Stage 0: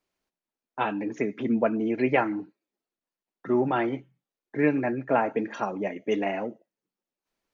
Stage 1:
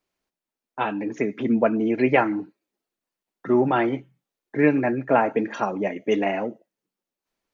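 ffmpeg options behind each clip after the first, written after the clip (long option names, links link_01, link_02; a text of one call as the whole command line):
ffmpeg -i in.wav -af "dynaudnorm=framelen=450:gausssize=5:maxgain=3.5dB,volume=1dB" out.wav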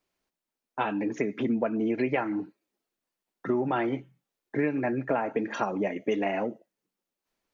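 ffmpeg -i in.wav -af "acompressor=threshold=-24dB:ratio=5" out.wav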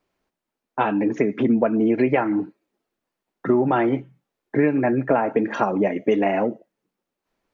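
ffmpeg -i in.wav -af "highshelf=frequency=3000:gain=-11,volume=8.5dB" out.wav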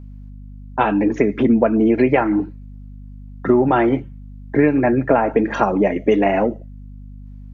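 ffmpeg -i in.wav -af "aeval=exprs='val(0)+0.0112*(sin(2*PI*50*n/s)+sin(2*PI*2*50*n/s)/2+sin(2*PI*3*50*n/s)/3+sin(2*PI*4*50*n/s)/4+sin(2*PI*5*50*n/s)/5)':channel_layout=same,volume=4dB" out.wav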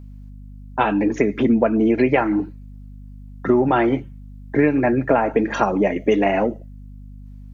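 ffmpeg -i in.wav -af "highshelf=frequency=4000:gain=9.5,volume=-2dB" out.wav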